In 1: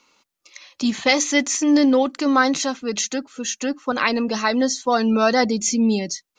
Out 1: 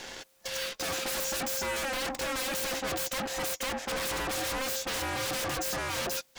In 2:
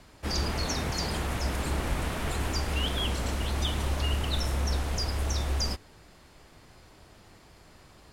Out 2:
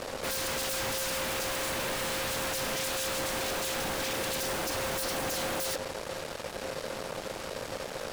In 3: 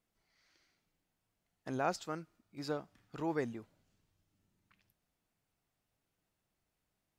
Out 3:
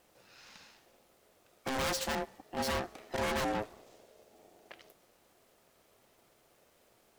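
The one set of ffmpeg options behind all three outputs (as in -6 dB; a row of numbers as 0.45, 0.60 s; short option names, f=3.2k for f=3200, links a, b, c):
-af "areverse,acompressor=threshold=-28dB:ratio=6,areverse,aeval=exprs='0.126*sin(PI/2*10*val(0)/0.126)':c=same,aeval=exprs='0.133*(cos(1*acos(clip(val(0)/0.133,-1,1)))-cos(1*PI/2))+0.0473*(cos(4*acos(clip(val(0)/0.133,-1,1)))-cos(4*PI/2))':c=same,aeval=exprs='val(0)*sin(2*PI*530*n/s)':c=same,asoftclip=type=tanh:threshold=-24.5dB,volume=-3.5dB"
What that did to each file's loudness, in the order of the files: -11.5, -1.5, +4.0 LU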